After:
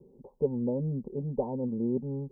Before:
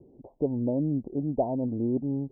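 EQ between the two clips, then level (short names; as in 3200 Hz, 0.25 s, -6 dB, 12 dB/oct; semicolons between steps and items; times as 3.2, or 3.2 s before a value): fixed phaser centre 450 Hz, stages 8; +1.5 dB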